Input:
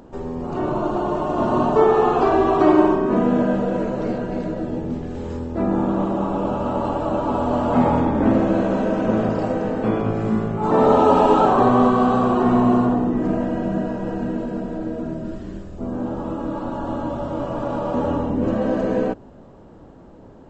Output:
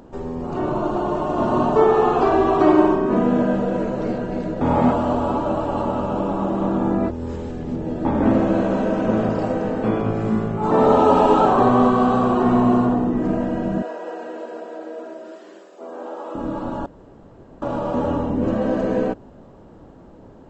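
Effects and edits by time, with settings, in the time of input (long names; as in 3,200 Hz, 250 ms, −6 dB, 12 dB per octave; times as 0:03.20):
0:04.61–0:08.05: reverse
0:13.82–0:16.35: high-pass filter 410 Hz 24 dB per octave
0:16.86–0:17.62: fill with room tone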